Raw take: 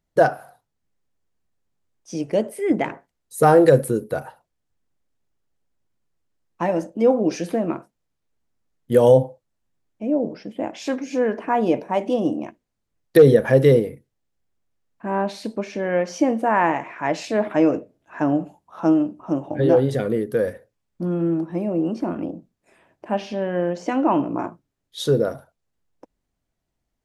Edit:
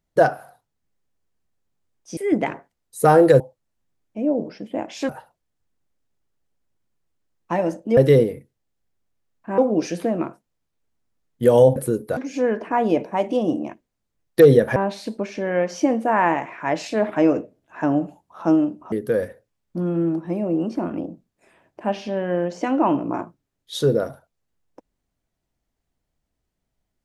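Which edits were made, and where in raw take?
0:02.17–0:02.55: remove
0:03.78–0:04.19: swap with 0:09.25–0:10.94
0:13.53–0:15.14: move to 0:07.07
0:19.30–0:20.17: remove

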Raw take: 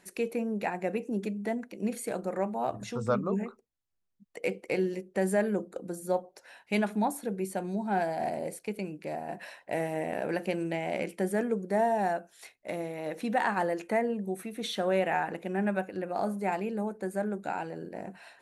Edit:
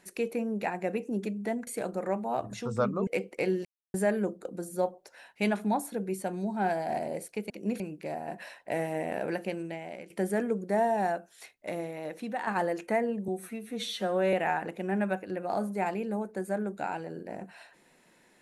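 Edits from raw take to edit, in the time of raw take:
0:01.67–0:01.97: move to 0:08.81
0:03.37–0:04.38: remove
0:04.96–0:05.25: silence
0:10.20–0:11.11: fade out, to −15 dB
0:12.82–0:13.48: fade out, to −8.5 dB
0:14.29–0:14.99: time-stretch 1.5×

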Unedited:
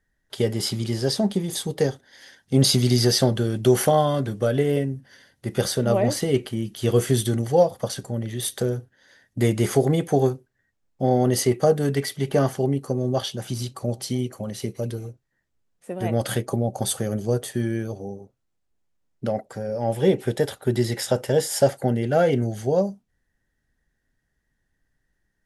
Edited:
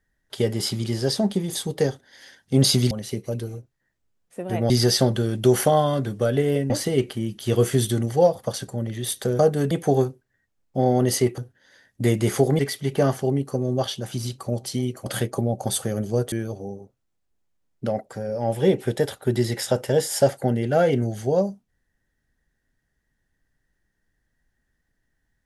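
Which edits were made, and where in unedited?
0:04.91–0:06.06: remove
0:08.75–0:09.96: swap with 0:11.63–0:11.95
0:14.42–0:16.21: move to 0:02.91
0:17.47–0:17.72: remove

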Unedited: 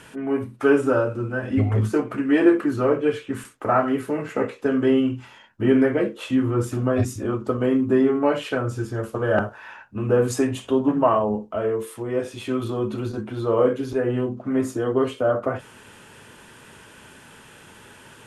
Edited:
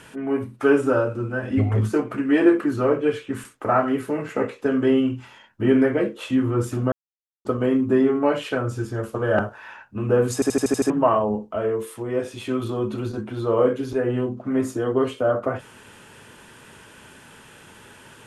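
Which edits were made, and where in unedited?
0:06.92–0:07.45: silence
0:10.34: stutter in place 0.08 s, 7 plays

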